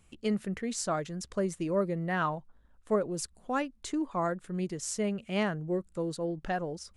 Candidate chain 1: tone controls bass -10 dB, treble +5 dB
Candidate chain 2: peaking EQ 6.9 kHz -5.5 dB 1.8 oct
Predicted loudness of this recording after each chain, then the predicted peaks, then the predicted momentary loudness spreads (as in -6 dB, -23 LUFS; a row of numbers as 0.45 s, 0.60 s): -34.0 LUFS, -33.0 LUFS; -15.0 dBFS, -17.0 dBFS; 6 LU, 5 LU